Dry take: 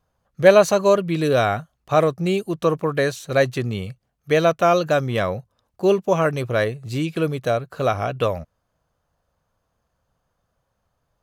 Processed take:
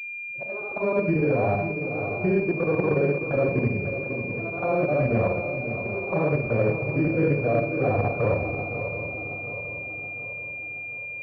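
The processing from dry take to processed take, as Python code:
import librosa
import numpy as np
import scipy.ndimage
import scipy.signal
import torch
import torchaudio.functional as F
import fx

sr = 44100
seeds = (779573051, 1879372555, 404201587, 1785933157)

p1 = fx.frame_reverse(x, sr, frame_ms=179.0)
p2 = fx.peak_eq(p1, sr, hz=930.0, db=3.0, octaves=1.2)
p3 = fx.notch(p2, sr, hz=640.0, q=12.0)
p4 = fx.over_compress(p3, sr, threshold_db=-24.0, ratio=-0.5)
p5 = p3 + (p4 * 10.0 ** (-1.5 / 20.0))
p6 = fx.auto_swell(p5, sr, attack_ms=464.0)
p7 = fx.level_steps(p6, sr, step_db=10)
p8 = fx.env_flanger(p7, sr, rest_ms=10.3, full_db=-18.5)
p9 = fx.air_absorb(p8, sr, metres=350.0)
p10 = fx.echo_swing(p9, sr, ms=724, ratio=3, feedback_pct=49, wet_db=-9.5)
p11 = fx.rev_schroeder(p10, sr, rt60_s=0.58, comb_ms=27, drr_db=5.5)
y = fx.pwm(p11, sr, carrier_hz=2400.0)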